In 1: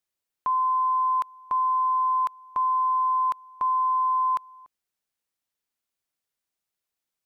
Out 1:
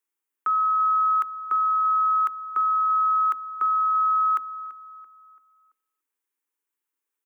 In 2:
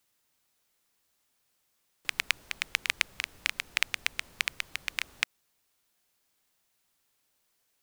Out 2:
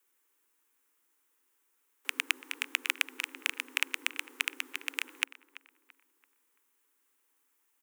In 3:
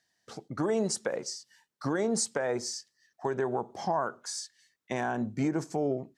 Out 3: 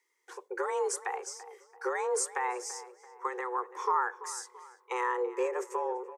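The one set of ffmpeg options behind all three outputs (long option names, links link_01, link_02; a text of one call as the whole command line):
ffmpeg -i in.wav -filter_complex "[0:a]equalizer=frequency=4200:width=1.3:gain=-12,afreqshift=250,asuperstop=centerf=650:order=4:qfactor=2.1,asplit=2[link_01][link_02];[link_02]adelay=336,lowpass=frequency=1900:poles=1,volume=-14.5dB,asplit=2[link_03][link_04];[link_04]adelay=336,lowpass=frequency=1900:poles=1,volume=0.47,asplit=2[link_05][link_06];[link_06]adelay=336,lowpass=frequency=1900:poles=1,volume=0.47,asplit=2[link_07][link_08];[link_08]adelay=336,lowpass=frequency=1900:poles=1,volume=0.47[link_09];[link_01][link_03][link_05][link_07][link_09]amix=inputs=5:normalize=0,volume=2dB" out.wav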